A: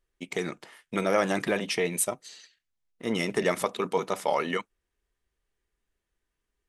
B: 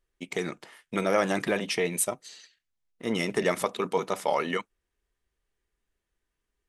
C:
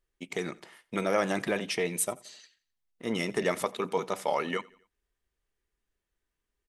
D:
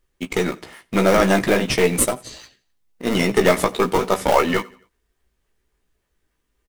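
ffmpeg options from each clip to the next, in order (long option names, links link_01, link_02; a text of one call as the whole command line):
ffmpeg -i in.wav -af anull out.wav
ffmpeg -i in.wav -af "aecho=1:1:87|174|261:0.0668|0.0307|0.0141,volume=-2.5dB" out.wav
ffmpeg -i in.wav -filter_complex "[0:a]asplit=2[link_01][link_02];[link_02]acrusher=samples=31:mix=1:aa=0.000001:lfo=1:lforange=49.6:lforate=3.6,volume=-6dB[link_03];[link_01][link_03]amix=inputs=2:normalize=0,aeval=exprs='0.299*(cos(1*acos(clip(val(0)/0.299,-1,1)))-cos(1*PI/2))+0.0133*(cos(8*acos(clip(val(0)/0.299,-1,1)))-cos(8*PI/2))':channel_layout=same,asplit=2[link_04][link_05];[link_05]adelay=16,volume=-6dB[link_06];[link_04][link_06]amix=inputs=2:normalize=0,volume=9dB" out.wav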